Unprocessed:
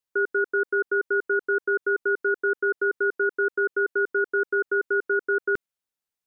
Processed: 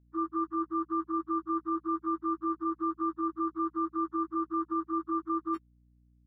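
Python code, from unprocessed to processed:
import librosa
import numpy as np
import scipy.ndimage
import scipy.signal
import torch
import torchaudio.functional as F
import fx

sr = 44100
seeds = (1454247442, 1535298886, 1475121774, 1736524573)

y = fx.octave_mirror(x, sr, pivot_hz=690.0)
y = scipy.signal.sosfilt(scipy.signal.butter(2, 250.0, 'highpass', fs=sr, output='sos'), y)
y = fx.add_hum(y, sr, base_hz=60, snr_db=31)
y = y * 10.0 ** (-6.0 / 20.0)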